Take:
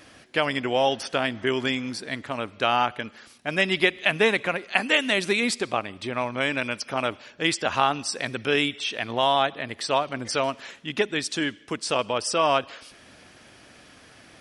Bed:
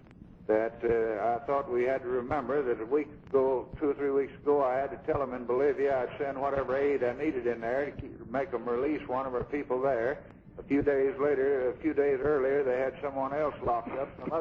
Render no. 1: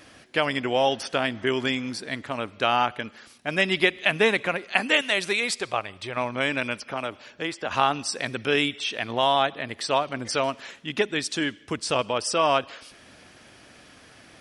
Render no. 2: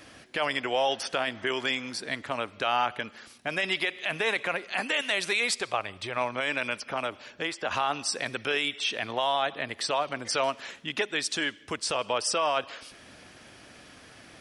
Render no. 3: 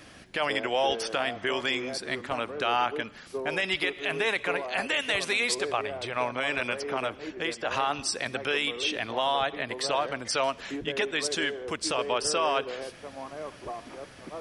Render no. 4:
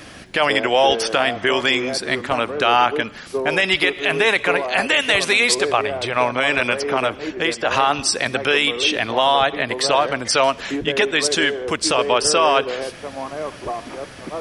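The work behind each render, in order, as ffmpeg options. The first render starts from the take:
-filter_complex "[0:a]asettb=1/sr,asplit=3[a][b][c];[a]atrim=end=5.014[d];[b]atrim=start=5.01:end=6.17,asetpts=PTS-STARTPTS,afade=t=in:d=0.004:c=qsin,afade=t=out:st=1.156:d=0.004:c=qsin,equalizer=f=250:w=1.6:g=-11.5[e];[c]atrim=start=6.166[f];[d][e]acrossfade=d=0.004:c1=hsin:c2=qsin[g];[g][f]acrossfade=d=0.004:c1=qsin:c2=hsin,asettb=1/sr,asplit=3[h][i][j];[h]atrim=end=6.784[k];[i]atrim=start=6.78:end=7.71,asetpts=PTS-STARTPTS,afade=t=in:d=0.004:c=qsin,afade=t=out:st=0.926:d=0.004:c=qsin,acrossover=split=400|1500|3500[l][m][n][o];[l]acompressor=threshold=-39dB:ratio=3[p];[m]acompressor=threshold=-30dB:ratio=3[q];[n]acompressor=threshold=-38dB:ratio=3[r];[o]acompressor=threshold=-45dB:ratio=3[s];[p][q][r][s]amix=inputs=4:normalize=0[t];[j]atrim=start=7.706[u];[k][t]acrossfade=d=0.004:c1=hsin:c2=qsin[v];[v][u]acrossfade=d=0.004:c1=qsin:c2=hsin,asettb=1/sr,asplit=3[w][x][y];[w]atrim=end=11.624[z];[x]atrim=start=11.62:end=12.02,asetpts=PTS-STARTPTS,afade=t=in:d=0.004:c=qsin,afade=t=out:st=0.396:d=0.004:c=qsin,equalizer=f=81:t=o:w=1.1:g=12[aa];[y]atrim=start=12.016[ab];[z][aa]acrossfade=d=0.004:c1=hsin:c2=qsin[ac];[ac][ab]acrossfade=d=0.004:c1=qsin:c2=hsin"
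-filter_complex "[0:a]acrossover=split=440[a][b];[a]acompressor=threshold=-40dB:ratio=6[c];[c][b]amix=inputs=2:normalize=0,alimiter=limit=-16dB:level=0:latency=1:release=16"
-filter_complex "[1:a]volume=-8.5dB[a];[0:a][a]amix=inputs=2:normalize=0"
-af "volume=10.5dB"

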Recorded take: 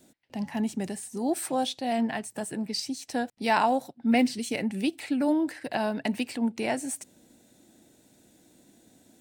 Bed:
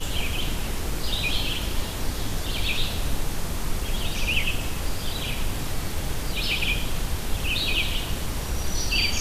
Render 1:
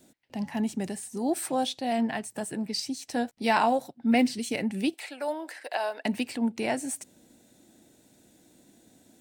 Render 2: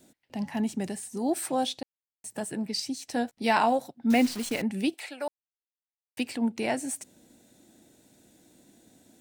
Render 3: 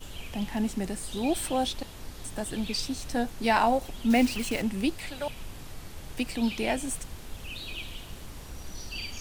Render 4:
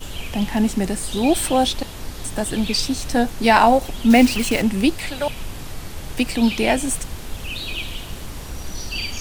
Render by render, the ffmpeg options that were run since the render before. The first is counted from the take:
-filter_complex "[0:a]asettb=1/sr,asplit=3[a][b][c];[a]atrim=end=3.124[d];[b]atrim=start=3.12:end=3.79,asetpts=PTS-STARTPTS,afade=t=in:d=0.004:c=qsin,afade=t=out:st=0.666:d=0.004:c=qsin,asplit=2[e][f];[f]adelay=13,volume=-9.5dB[g];[e][g]amix=inputs=2:normalize=0,atrim=end_sample=29547[h];[c]atrim=start=3.786[i];[d][h]acrossfade=d=0.004:c1=hsin:c2=qsin[j];[j][i]acrossfade=d=0.004:c1=qsin:c2=hsin,asettb=1/sr,asplit=3[k][l][m];[k]atrim=end=4.944[n];[l]atrim=start=4.94:end=6.05,asetpts=PTS-STARTPTS,afade=t=in:d=0.004:c=qsin,afade=t=out:st=1.106:d=0.004:c=qsin,highpass=f=480:w=0.5412,highpass=f=480:w=1.3066[o];[m]atrim=start=6.046[p];[n][o]acrossfade=d=0.004:c1=hsin:c2=qsin[q];[q][p]acrossfade=d=0.004:c1=qsin:c2=hsin"
-filter_complex "[0:a]asettb=1/sr,asplit=3[a][b][c];[a]atrim=end=4.104[d];[b]atrim=start=4.1:end=4.62,asetpts=PTS-STARTPTS,afade=t=in:d=0.004:c=qsin,afade=t=out:st=0.516:d=0.004:c=qsin,acrusher=bits=7:dc=4:mix=0:aa=0.000001[e];[c]atrim=start=4.616[f];[d][e]acrossfade=d=0.004:c1=hsin:c2=qsin[g];[g][f]acrossfade=d=0.004:c1=qsin:c2=hsin,asplit=5[h][i][j][k][l];[h]atrim=end=1.83,asetpts=PTS-STARTPTS,afade=t=out:st=1.826:d=0.004:c=hsin[m];[i]atrim=start=1.83:end=2.24,asetpts=PTS-STARTPTS,volume=0[n];[j]atrim=start=2.24:end=5.28,asetpts=PTS-STARTPTS,afade=t=in:d=0.004:c=hsin,afade=t=out:st=3.036:d=0.004:c=hsin[o];[k]atrim=start=5.28:end=6.17,asetpts=PTS-STARTPTS,volume=0[p];[l]atrim=start=6.17,asetpts=PTS-STARTPTS,afade=t=in:d=0.004:c=hsin[q];[m][n][o][p][q]concat=n=5:v=0:a=1"
-filter_complex "[1:a]volume=-14dB[a];[0:a][a]amix=inputs=2:normalize=0"
-af "volume=10dB,alimiter=limit=-1dB:level=0:latency=1"

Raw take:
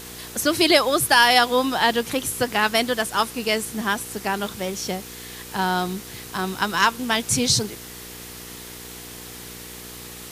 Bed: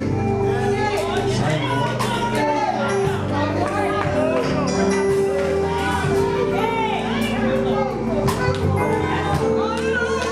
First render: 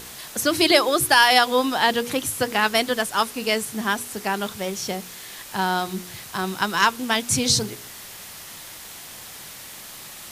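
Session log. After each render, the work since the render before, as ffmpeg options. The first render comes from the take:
-af "bandreject=f=60:t=h:w=4,bandreject=f=120:t=h:w=4,bandreject=f=180:t=h:w=4,bandreject=f=240:t=h:w=4,bandreject=f=300:t=h:w=4,bandreject=f=360:t=h:w=4,bandreject=f=420:t=h:w=4,bandreject=f=480:t=h:w=4"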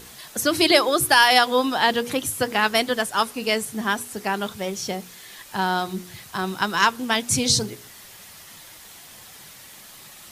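-af "afftdn=nr=6:nf=-40"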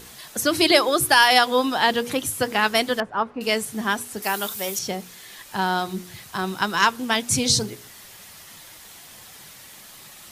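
-filter_complex "[0:a]asettb=1/sr,asplit=3[a][b][c];[a]atrim=end=3.004[d];[b]atrim=start=3:end=3.41,asetpts=PTS-STARTPTS,afade=t=in:d=0.004:c=qsin,afade=t=out:st=0.406:d=0.004:c=qsin,lowpass=1.3k[e];[c]atrim=start=3.406[f];[d][e]acrossfade=d=0.004:c1=hsin:c2=qsin[g];[g][f]acrossfade=d=0.004:c1=qsin:c2=hsin,asettb=1/sr,asplit=3[h][i][j];[h]atrim=end=4.224[k];[i]atrim=start=4.22:end=4.79,asetpts=PTS-STARTPTS,afade=t=in:d=0.004:c=qsin,afade=t=out:st=0.566:d=0.004:c=qsin,aemphasis=mode=production:type=bsi[l];[j]atrim=start=4.786[m];[k][l]acrossfade=d=0.004:c1=hsin:c2=qsin[n];[n][m]acrossfade=d=0.004:c1=qsin:c2=hsin"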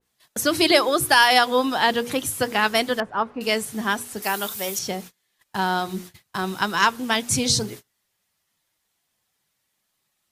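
-af "agate=range=-30dB:threshold=-37dB:ratio=16:detection=peak,adynamicequalizer=threshold=0.0398:dfrequency=2400:dqfactor=0.7:tfrequency=2400:tqfactor=0.7:attack=5:release=100:ratio=0.375:range=1.5:mode=cutabove:tftype=highshelf"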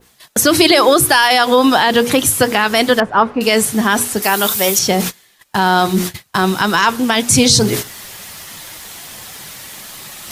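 -af "areverse,acompressor=mode=upward:threshold=-23dB:ratio=2.5,areverse,alimiter=level_in=13dB:limit=-1dB:release=50:level=0:latency=1"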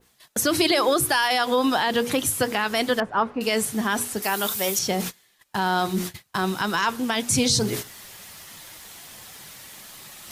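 -af "volume=-10dB"

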